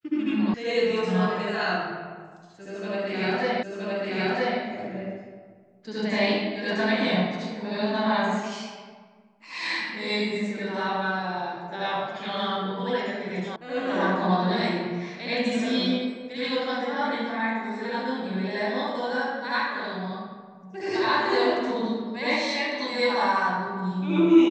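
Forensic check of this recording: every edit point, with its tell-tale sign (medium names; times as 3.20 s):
0.54 s: sound stops dead
3.63 s: repeat of the last 0.97 s
13.56 s: sound stops dead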